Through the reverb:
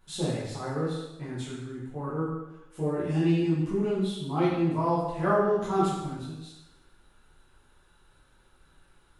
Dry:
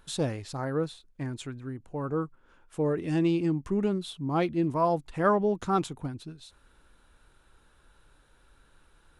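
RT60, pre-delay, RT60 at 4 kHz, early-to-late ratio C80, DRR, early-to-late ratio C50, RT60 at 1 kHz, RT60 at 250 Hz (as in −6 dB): 1.0 s, 4 ms, 0.90 s, 3.0 dB, −9.5 dB, 0.5 dB, 0.95 s, 0.90 s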